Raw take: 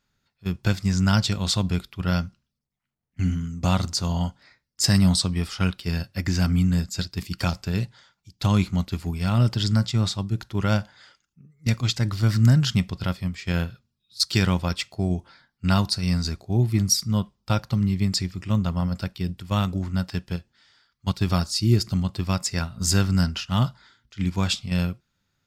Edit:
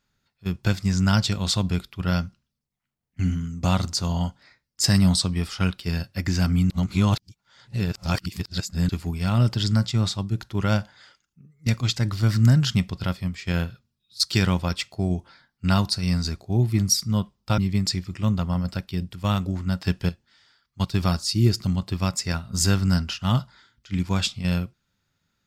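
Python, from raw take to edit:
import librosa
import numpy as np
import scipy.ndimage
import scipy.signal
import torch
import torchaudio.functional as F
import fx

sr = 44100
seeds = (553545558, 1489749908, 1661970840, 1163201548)

y = fx.edit(x, sr, fx.reverse_span(start_s=6.7, length_s=2.19),
    fx.cut(start_s=17.58, length_s=0.27),
    fx.clip_gain(start_s=20.11, length_s=0.25, db=5.0), tone=tone)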